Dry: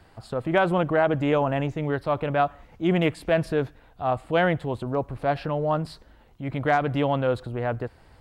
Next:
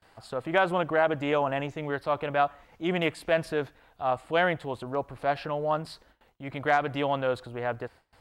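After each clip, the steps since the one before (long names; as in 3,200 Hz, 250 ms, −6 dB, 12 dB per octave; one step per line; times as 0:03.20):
low-shelf EQ 350 Hz −11 dB
noise gate with hold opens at −49 dBFS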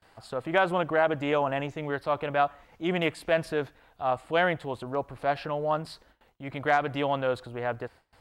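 no processing that can be heard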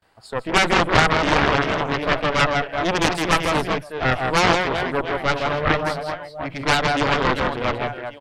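reverse bouncing-ball delay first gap 160 ms, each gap 1.4×, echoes 5
noise reduction from a noise print of the clip's start 9 dB
harmonic generator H 4 −8 dB, 7 −9 dB, 8 −16 dB, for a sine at −8.5 dBFS
level +3.5 dB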